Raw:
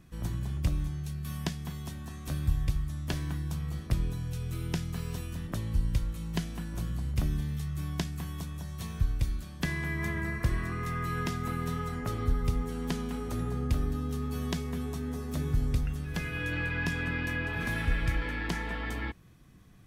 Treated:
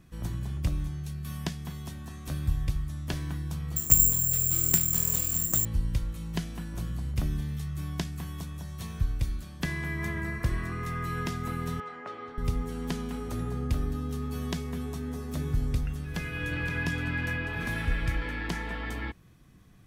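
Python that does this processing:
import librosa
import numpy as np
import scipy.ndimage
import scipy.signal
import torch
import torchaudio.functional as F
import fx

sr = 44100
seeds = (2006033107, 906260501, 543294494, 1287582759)

y = fx.resample_bad(x, sr, factor=6, down='none', up='zero_stuff', at=(3.76, 5.65))
y = fx.bandpass_edges(y, sr, low_hz=480.0, high_hz=2800.0, at=(11.8, 12.38))
y = fx.echo_throw(y, sr, start_s=15.89, length_s=0.96, ms=520, feedback_pct=15, wet_db=-6.5)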